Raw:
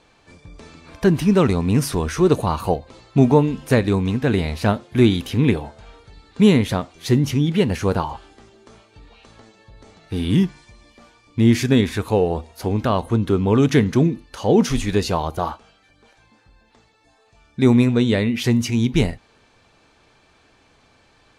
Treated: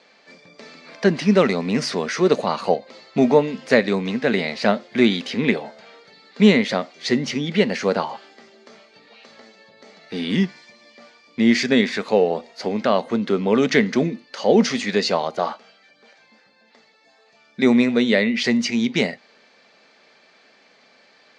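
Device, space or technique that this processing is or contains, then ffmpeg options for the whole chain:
television speaker: -af "highpass=frequency=210:width=0.5412,highpass=frequency=210:width=1.3066,equalizer=frequency=210:width_type=q:width=4:gain=3,equalizer=frequency=310:width_type=q:width=4:gain=-8,equalizer=frequency=580:width_type=q:width=4:gain=5,equalizer=frequency=970:width_type=q:width=4:gain=-4,equalizer=frequency=2000:width_type=q:width=4:gain=8,equalizer=frequency=4600:width_type=q:width=4:gain=7,lowpass=frequency=6700:width=0.5412,lowpass=frequency=6700:width=1.3066,volume=1dB"

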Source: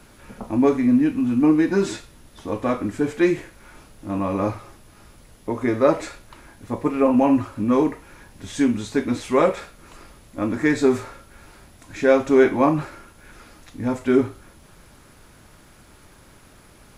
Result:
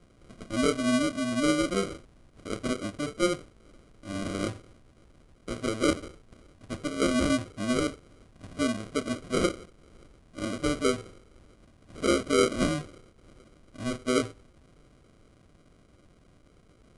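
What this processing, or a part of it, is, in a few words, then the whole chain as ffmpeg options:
crushed at another speed: -af "asetrate=88200,aresample=44100,acrusher=samples=25:mix=1:aa=0.000001,asetrate=22050,aresample=44100,volume=-8.5dB"

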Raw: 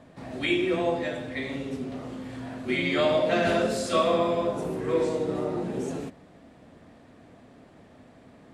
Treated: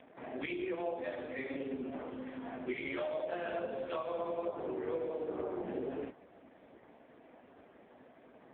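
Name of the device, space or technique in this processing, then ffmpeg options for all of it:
voicemail: -af "highpass=320,lowpass=2900,acompressor=threshold=-32dB:ratio=10" -ar 8000 -c:a libopencore_amrnb -b:a 4750

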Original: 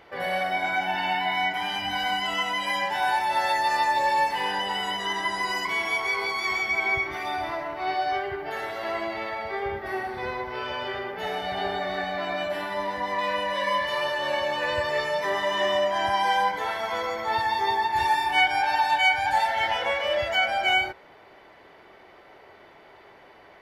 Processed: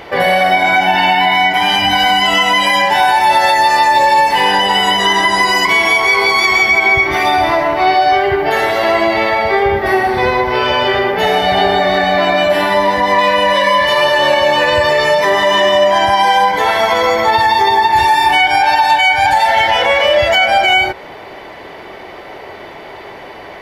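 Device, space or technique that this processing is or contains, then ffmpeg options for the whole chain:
mastering chain: -af "equalizer=frequency=1400:width_type=o:width=0.52:gain=-4,acompressor=threshold=-30dB:ratio=2,alimiter=level_in=21.5dB:limit=-1dB:release=50:level=0:latency=1,volume=-1.5dB"

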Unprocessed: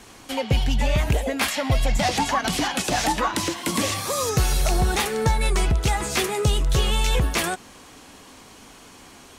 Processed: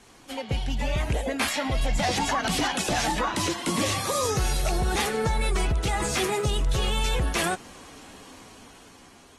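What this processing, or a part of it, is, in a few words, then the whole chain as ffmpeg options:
low-bitrate web radio: -af "dynaudnorm=framelen=260:gausssize=9:maxgain=7dB,alimiter=limit=-10dB:level=0:latency=1:release=14,volume=-8dB" -ar 44100 -c:a aac -b:a 32k

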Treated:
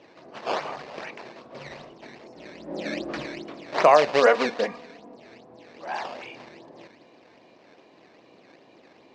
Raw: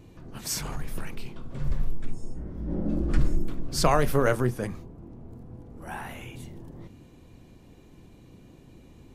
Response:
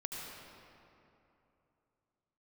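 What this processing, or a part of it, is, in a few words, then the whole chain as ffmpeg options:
circuit-bent sampling toy: -filter_complex "[0:a]asettb=1/sr,asplit=3[link_01][link_02][link_03];[link_01]atrim=end=4.224[link_04];[link_02]atrim=start=4.22:end=5.16,asetpts=PTS-STARTPTS,afade=type=in:duration=0.004:curve=qsin,afade=type=out:start_time=0.936:duration=0.004:curve=qsin,aecho=1:1:4.2:0.97,atrim=end_sample=41454[link_05];[link_03]atrim=start=5.156[link_06];[link_04][link_05]acrossfade=duration=0.004:curve1=hsin:curve2=qsin[link_07];[link_07][link_06]acrossfade=duration=0.004:curve1=qsin:curve2=hsin,acrusher=samples=13:mix=1:aa=0.000001:lfo=1:lforange=20.8:lforate=2.5,highpass=520,equalizer=frequency=620:width_type=q:width=4:gain=5,equalizer=frequency=1400:width_type=q:width=4:gain=-6,equalizer=frequency=3300:width_type=q:width=4:gain=-5,lowpass=frequency=4800:width=0.5412,lowpass=frequency=4800:width=1.3066,volume=7.5dB"

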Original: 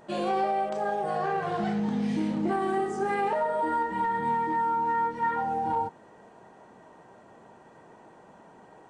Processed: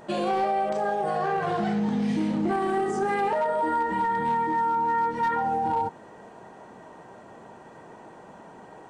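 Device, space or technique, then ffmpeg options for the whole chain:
clipper into limiter: -af "asoftclip=type=hard:threshold=-21dB,alimiter=level_in=1dB:limit=-24dB:level=0:latency=1:release=62,volume=-1dB,volume=6dB"

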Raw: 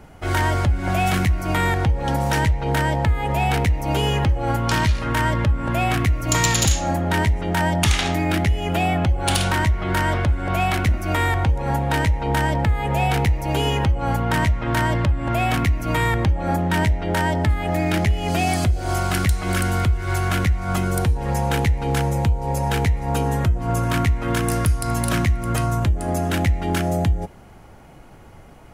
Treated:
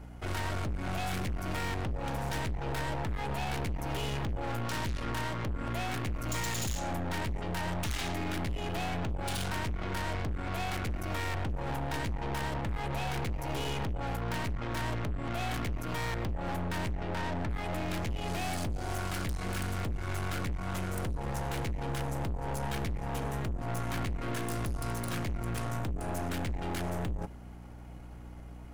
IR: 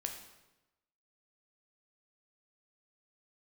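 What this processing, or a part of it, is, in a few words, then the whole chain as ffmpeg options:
valve amplifier with mains hum: -filter_complex "[0:a]asettb=1/sr,asplit=3[link_01][link_02][link_03];[link_01]atrim=end=16.974[link_04];[link_02]atrim=start=16.97:end=17.57,asetpts=PTS-STARTPTS,afade=type=in:duration=0.004:curve=qsin,afade=type=out:start_time=0.596:duration=0.004:curve=qsin,acrossover=split=2600[link_05][link_06];[link_06]acompressor=threshold=-44dB:ratio=4:attack=1:release=60[link_07];[link_05][link_07]amix=inputs=2:normalize=0[link_08];[link_03]atrim=start=17.566[link_09];[link_04][link_08]acrossfade=duration=0.004:curve1=hsin:curve2=qsin[link_10];[link_10][link_09]acrossfade=duration=0.004:curve1=qsin:curve2=hsin,aeval=exprs='(tanh(25.1*val(0)+0.65)-tanh(0.65))/25.1':channel_layout=same,aeval=exprs='val(0)+0.00891*(sin(2*PI*60*n/s)+sin(2*PI*2*60*n/s)/2+sin(2*PI*3*60*n/s)/3+sin(2*PI*4*60*n/s)/4+sin(2*PI*5*60*n/s)/5)':channel_layout=same,volume=-4.5dB"

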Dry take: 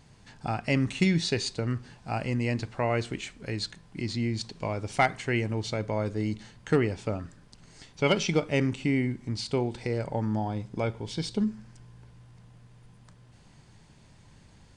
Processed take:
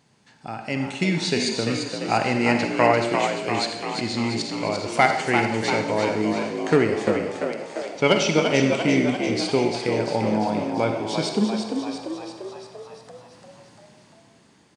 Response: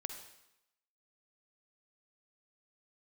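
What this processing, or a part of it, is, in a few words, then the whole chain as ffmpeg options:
far laptop microphone: -filter_complex "[1:a]atrim=start_sample=2205[link_01];[0:a][link_01]afir=irnorm=-1:irlink=0,highpass=170,dynaudnorm=framelen=210:gausssize=11:maxgain=9dB,asettb=1/sr,asplit=3[link_02][link_03][link_04];[link_02]atrim=end=2.114[link_05];[link_03]atrim=start=2.11:end=2.93,asetpts=PTS-STARTPTS,afade=type=in:duration=0.004:curve=qsin,afade=type=out:start_time=0.816:duration=0.004:curve=qsin,equalizer=frequency=1300:width_type=o:width=2.7:gain=5.5[link_06];[link_04]atrim=start=2.926[link_07];[link_05][link_06]acrossfade=duration=0.004:curve1=hsin:curve2=qsin[link_08];[link_08][link_07]acrossfade=duration=0.004:curve1=qsin:curve2=hsin,asplit=9[link_09][link_10][link_11][link_12][link_13][link_14][link_15][link_16][link_17];[link_10]adelay=344,afreqshift=57,volume=-6dB[link_18];[link_11]adelay=688,afreqshift=114,volume=-10.3dB[link_19];[link_12]adelay=1032,afreqshift=171,volume=-14.6dB[link_20];[link_13]adelay=1376,afreqshift=228,volume=-18.9dB[link_21];[link_14]adelay=1720,afreqshift=285,volume=-23.2dB[link_22];[link_15]adelay=2064,afreqshift=342,volume=-27.5dB[link_23];[link_16]adelay=2408,afreqshift=399,volume=-31.8dB[link_24];[link_17]adelay=2752,afreqshift=456,volume=-36.1dB[link_25];[link_09][link_18][link_19][link_20][link_21][link_22][link_23][link_24][link_25]amix=inputs=9:normalize=0"

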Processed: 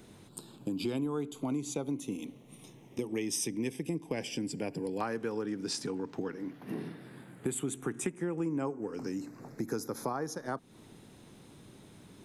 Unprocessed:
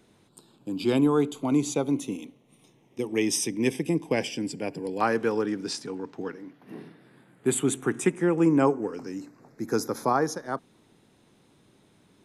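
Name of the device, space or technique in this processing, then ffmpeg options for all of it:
ASMR close-microphone chain: -af "lowshelf=frequency=230:gain=5.5,acompressor=threshold=-37dB:ratio=5,highshelf=frequency=8200:gain=6,volume=4dB"

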